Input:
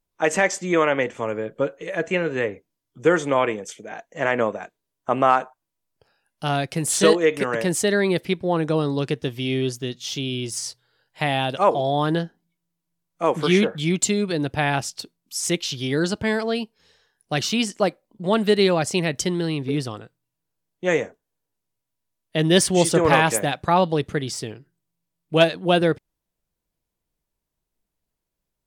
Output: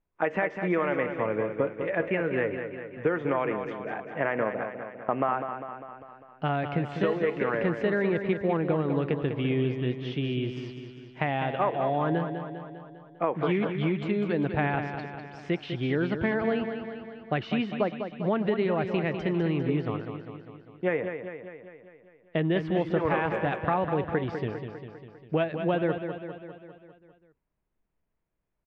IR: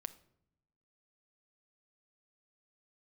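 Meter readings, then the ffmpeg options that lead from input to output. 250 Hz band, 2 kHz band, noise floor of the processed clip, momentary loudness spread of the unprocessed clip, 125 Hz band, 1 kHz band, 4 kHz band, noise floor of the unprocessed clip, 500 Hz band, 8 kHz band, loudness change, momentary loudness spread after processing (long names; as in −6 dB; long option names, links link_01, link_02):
−4.5 dB, −6.5 dB, −76 dBFS, 12 LU, −4.0 dB, −6.5 dB, −15.5 dB, −82 dBFS, −6.0 dB, below −40 dB, −6.5 dB, 14 LU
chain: -af "acompressor=threshold=-23dB:ratio=6,lowpass=frequency=2400:width=0.5412,lowpass=frequency=2400:width=1.3066,aecho=1:1:200|400|600|800|1000|1200|1400:0.398|0.235|0.139|0.0818|0.0482|0.0285|0.0168"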